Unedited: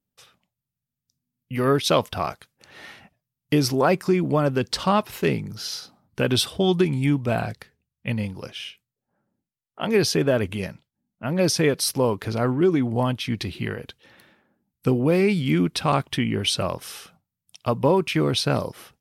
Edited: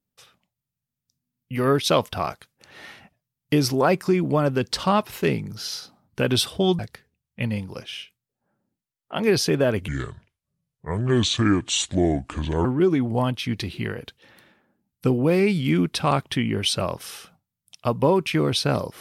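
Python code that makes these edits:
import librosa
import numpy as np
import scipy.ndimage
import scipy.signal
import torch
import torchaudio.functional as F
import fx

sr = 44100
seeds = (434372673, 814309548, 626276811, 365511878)

y = fx.edit(x, sr, fx.cut(start_s=6.79, length_s=0.67),
    fx.speed_span(start_s=10.55, length_s=1.91, speed=0.69), tone=tone)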